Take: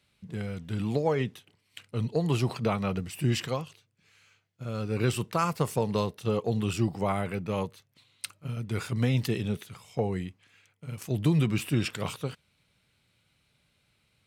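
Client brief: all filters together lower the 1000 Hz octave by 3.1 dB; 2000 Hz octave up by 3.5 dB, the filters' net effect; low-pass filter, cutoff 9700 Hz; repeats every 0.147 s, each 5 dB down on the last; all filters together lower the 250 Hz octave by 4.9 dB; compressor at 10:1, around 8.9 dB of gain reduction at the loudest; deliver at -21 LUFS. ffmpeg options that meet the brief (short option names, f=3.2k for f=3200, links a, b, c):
-af "lowpass=9.7k,equalizer=f=250:t=o:g=-7,equalizer=f=1k:t=o:g=-5.5,equalizer=f=2k:t=o:g=6,acompressor=threshold=-32dB:ratio=10,aecho=1:1:147|294|441|588|735|882|1029:0.562|0.315|0.176|0.0988|0.0553|0.031|0.0173,volume=16dB"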